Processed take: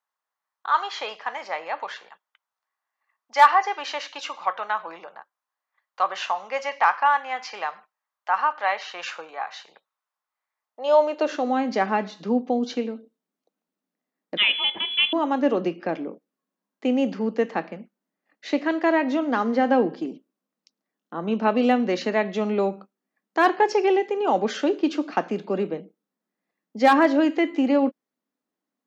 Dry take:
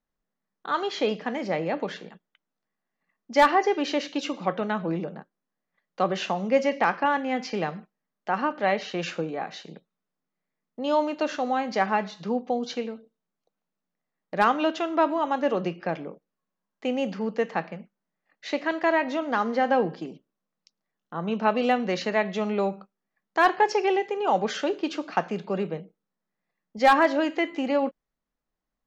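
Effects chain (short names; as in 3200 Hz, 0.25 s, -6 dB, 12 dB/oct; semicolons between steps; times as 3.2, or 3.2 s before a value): 14.37–15.13 inverted band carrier 3700 Hz; high-pass sweep 980 Hz -> 260 Hz, 10.57–11.55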